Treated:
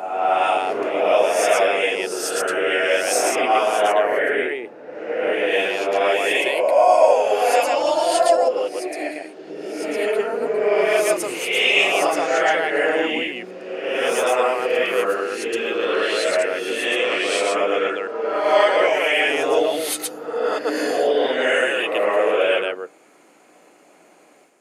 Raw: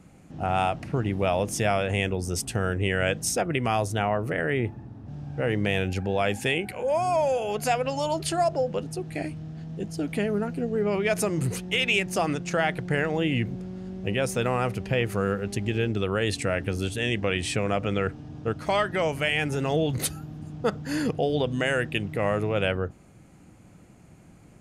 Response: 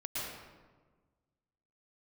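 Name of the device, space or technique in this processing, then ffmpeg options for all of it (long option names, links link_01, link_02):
ghost voice: -filter_complex "[0:a]areverse[link_01];[1:a]atrim=start_sample=2205[link_02];[link_01][link_02]afir=irnorm=-1:irlink=0,areverse,highpass=frequency=370:width=0.5412,highpass=frequency=370:width=1.3066,volume=5.5dB"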